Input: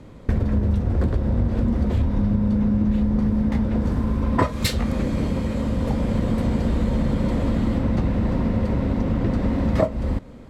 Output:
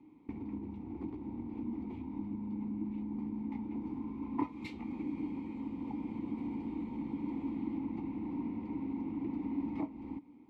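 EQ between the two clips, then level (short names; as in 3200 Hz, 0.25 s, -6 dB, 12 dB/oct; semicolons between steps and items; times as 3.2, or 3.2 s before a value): vowel filter u; -4.0 dB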